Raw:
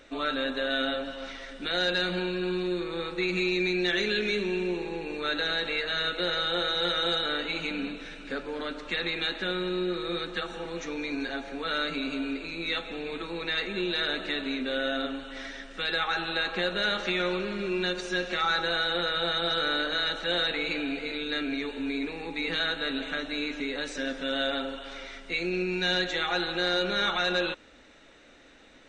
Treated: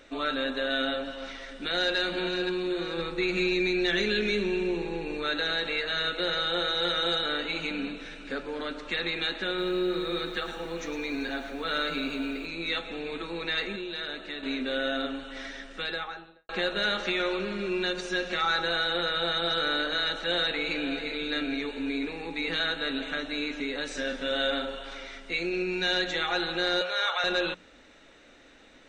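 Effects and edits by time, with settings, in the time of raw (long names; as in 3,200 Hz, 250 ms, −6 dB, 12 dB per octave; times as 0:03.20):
0:01.22–0:01.97: delay throw 520 ms, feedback 55%, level −7.5 dB
0:02.98–0:05.23: low-shelf EQ 180 Hz +6.5 dB
0:09.47–0:12.46: feedback echo at a low word length 110 ms, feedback 35%, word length 9 bits, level −9.5 dB
0:13.76–0:14.43: clip gain −6.5 dB
0:15.67–0:16.49: fade out and dull
0:20.13–0:21.08: delay throw 530 ms, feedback 45%, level −12.5 dB
0:23.87–0:24.95: double-tracking delay 39 ms −6 dB
0:26.81–0:27.24: elliptic high-pass filter 480 Hz, stop band 50 dB
whole clip: mains-hum notches 60/120/180 Hz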